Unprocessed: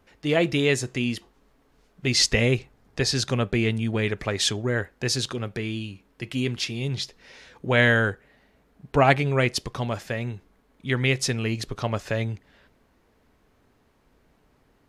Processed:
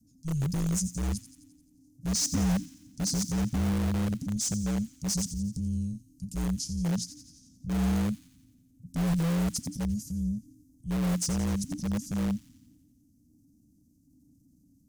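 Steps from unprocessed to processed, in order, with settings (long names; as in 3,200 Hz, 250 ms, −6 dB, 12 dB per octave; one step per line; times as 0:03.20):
elliptic band-stop filter 220–6,200 Hz, stop band 50 dB
parametric band 3,800 Hz −9 dB 0.87 octaves
frequency shifter −310 Hz
in parallel at −8 dB: wrap-around overflow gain 25 dB
on the sum: transient designer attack −4 dB, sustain +4 dB
on a send: delay with a high-pass on its return 87 ms, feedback 58%, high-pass 3,600 Hz, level −11.5 dB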